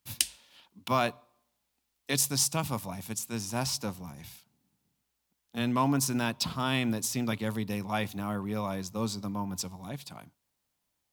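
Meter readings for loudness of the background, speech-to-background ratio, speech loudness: -31.0 LUFS, 0.0 dB, -31.0 LUFS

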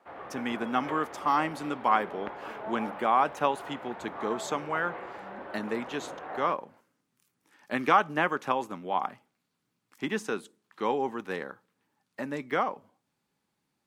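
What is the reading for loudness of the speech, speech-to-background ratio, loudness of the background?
-30.5 LUFS, 10.5 dB, -41.0 LUFS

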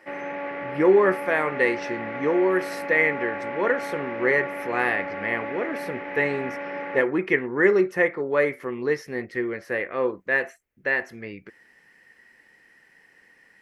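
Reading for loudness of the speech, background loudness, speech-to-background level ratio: -24.0 LUFS, -32.0 LUFS, 8.0 dB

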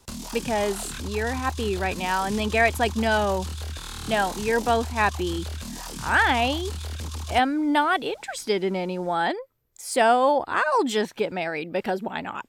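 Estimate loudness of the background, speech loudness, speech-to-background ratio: -34.5 LUFS, -24.5 LUFS, 10.0 dB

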